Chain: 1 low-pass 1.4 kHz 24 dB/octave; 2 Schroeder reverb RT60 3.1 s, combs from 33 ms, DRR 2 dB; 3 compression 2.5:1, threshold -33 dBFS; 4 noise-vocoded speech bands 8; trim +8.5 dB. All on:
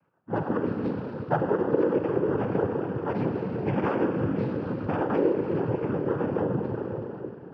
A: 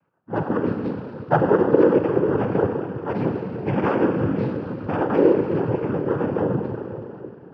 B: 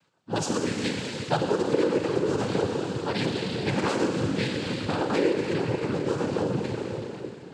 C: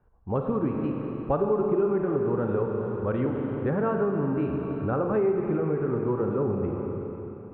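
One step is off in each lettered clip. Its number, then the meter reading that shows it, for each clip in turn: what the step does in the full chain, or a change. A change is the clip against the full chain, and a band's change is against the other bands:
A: 3, mean gain reduction 3.5 dB; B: 1, 2 kHz band +5.5 dB; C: 4, 2 kHz band -4.0 dB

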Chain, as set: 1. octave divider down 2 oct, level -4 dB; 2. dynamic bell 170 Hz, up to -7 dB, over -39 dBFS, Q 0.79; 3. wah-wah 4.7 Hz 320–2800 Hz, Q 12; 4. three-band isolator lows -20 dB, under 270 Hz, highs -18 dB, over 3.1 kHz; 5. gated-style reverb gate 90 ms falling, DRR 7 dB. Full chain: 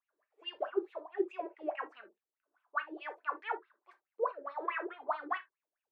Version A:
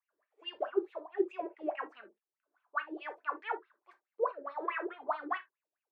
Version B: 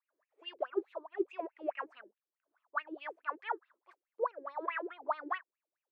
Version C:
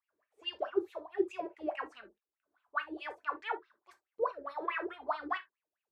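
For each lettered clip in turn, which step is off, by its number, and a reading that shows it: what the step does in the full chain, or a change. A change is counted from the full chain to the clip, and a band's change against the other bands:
2, 250 Hz band +2.0 dB; 5, 4 kHz band -2.0 dB; 4, 4 kHz band +3.0 dB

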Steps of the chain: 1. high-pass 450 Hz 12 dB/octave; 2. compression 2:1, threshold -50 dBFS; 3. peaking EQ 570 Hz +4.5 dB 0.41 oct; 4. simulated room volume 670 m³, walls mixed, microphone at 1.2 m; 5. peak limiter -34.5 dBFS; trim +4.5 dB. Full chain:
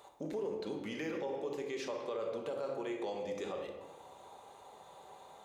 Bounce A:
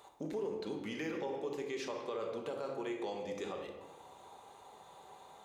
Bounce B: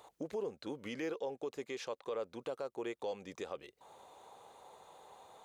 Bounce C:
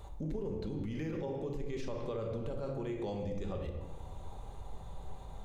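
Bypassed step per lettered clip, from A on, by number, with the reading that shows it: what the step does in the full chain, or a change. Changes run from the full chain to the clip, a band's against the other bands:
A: 3, 500 Hz band -1.5 dB; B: 4, crest factor change +2.5 dB; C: 1, 125 Hz band +17.5 dB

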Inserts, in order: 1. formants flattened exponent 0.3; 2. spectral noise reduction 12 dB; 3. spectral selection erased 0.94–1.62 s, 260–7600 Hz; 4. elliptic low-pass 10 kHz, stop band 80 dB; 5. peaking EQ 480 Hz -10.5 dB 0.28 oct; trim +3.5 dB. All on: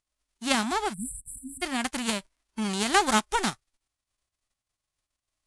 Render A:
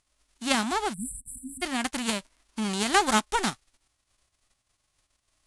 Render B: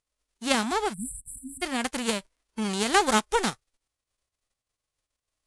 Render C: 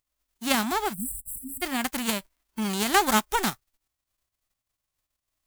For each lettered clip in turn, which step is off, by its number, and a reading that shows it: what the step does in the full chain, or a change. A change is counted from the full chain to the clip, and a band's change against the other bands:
2, momentary loudness spread change +2 LU; 5, 500 Hz band +4.0 dB; 4, crest factor change +1.5 dB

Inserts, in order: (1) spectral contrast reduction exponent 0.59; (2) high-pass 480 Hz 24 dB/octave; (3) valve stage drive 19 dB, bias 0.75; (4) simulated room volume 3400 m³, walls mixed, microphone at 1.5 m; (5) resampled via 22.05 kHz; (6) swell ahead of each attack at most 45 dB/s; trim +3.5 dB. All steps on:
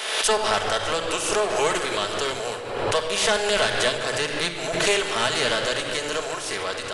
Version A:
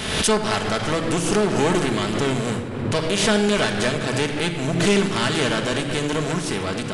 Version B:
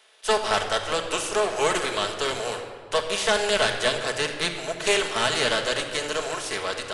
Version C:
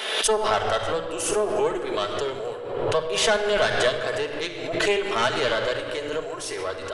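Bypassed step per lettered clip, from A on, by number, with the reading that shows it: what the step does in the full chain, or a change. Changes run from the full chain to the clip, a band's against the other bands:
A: 2, 125 Hz band +13.5 dB; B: 6, crest factor change -2.0 dB; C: 1, 500 Hz band +3.0 dB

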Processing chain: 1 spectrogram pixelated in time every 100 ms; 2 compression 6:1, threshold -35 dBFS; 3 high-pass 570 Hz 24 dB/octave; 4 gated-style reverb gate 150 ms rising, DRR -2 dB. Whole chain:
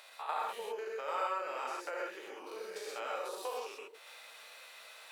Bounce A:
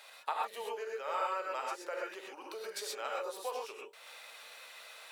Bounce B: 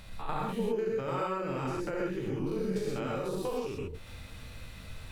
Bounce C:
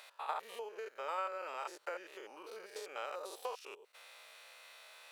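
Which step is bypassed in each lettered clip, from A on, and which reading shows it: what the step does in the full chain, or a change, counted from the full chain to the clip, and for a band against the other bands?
1, 8 kHz band +3.5 dB; 3, 250 Hz band +21.5 dB; 4, crest factor change +3.5 dB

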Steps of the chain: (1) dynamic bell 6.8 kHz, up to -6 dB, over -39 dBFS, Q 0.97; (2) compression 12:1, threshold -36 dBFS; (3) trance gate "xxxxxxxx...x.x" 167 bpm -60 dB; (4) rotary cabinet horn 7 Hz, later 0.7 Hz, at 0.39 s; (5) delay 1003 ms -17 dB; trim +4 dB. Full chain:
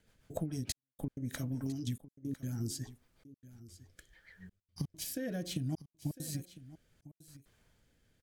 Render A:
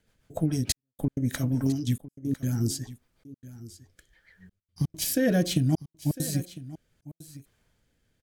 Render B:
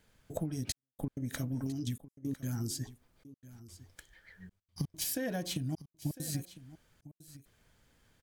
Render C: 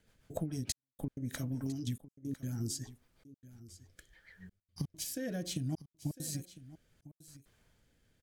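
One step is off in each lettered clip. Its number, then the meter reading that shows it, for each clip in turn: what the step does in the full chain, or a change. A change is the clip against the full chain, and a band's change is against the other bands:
2, mean gain reduction 9.0 dB; 4, 125 Hz band -2.0 dB; 1, 8 kHz band +2.5 dB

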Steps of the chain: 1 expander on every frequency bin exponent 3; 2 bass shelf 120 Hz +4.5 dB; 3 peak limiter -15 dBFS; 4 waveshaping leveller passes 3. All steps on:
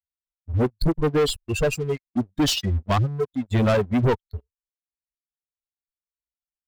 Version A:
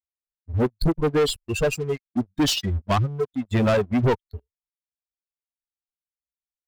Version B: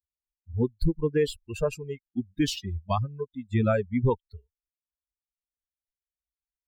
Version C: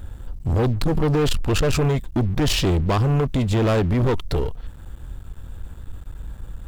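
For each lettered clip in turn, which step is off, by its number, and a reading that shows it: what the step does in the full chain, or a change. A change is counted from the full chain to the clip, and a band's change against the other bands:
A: 2, 125 Hz band -1.5 dB; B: 4, crest factor change +5.0 dB; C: 1, momentary loudness spread change +12 LU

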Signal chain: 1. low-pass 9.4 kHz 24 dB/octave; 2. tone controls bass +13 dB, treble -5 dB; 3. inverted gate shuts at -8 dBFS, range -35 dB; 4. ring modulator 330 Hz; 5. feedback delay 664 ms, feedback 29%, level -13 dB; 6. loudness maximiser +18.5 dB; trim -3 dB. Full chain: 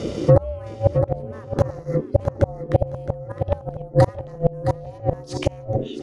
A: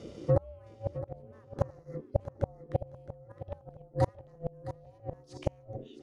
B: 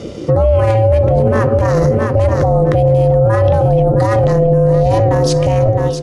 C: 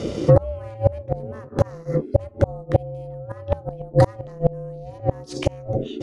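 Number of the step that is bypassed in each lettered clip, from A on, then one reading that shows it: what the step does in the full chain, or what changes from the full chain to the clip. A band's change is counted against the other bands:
6, crest factor change +6.5 dB; 3, crest factor change -11.0 dB; 5, momentary loudness spread change +5 LU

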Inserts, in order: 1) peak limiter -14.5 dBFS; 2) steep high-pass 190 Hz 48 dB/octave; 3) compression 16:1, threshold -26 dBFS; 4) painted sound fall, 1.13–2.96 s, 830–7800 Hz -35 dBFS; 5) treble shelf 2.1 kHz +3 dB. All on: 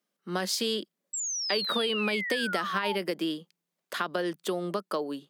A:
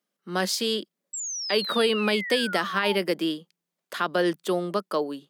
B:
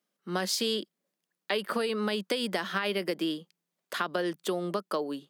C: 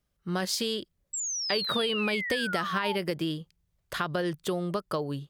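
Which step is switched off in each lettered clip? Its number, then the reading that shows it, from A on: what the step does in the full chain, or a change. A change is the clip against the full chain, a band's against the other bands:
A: 3, mean gain reduction 4.0 dB; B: 4, 8 kHz band -6.0 dB; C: 2, 125 Hz band +6.5 dB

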